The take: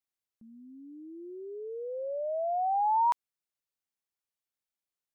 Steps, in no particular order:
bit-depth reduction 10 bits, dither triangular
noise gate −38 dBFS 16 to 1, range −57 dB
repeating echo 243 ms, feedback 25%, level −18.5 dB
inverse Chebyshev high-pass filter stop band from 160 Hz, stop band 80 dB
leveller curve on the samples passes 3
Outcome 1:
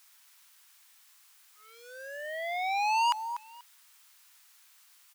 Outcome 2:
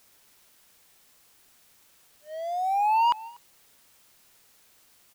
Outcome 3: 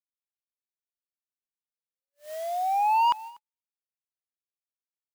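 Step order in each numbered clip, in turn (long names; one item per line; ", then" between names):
noise gate, then repeating echo, then leveller curve on the samples, then bit-depth reduction, then inverse Chebyshev high-pass filter
inverse Chebyshev high-pass filter, then leveller curve on the samples, then repeating echo, then noise gate, then bit-depth reduction
bit-depth reduction, then inverse Chebyshev high-pass filter, then leveller curve on the samples, then repeating echo, then noise gate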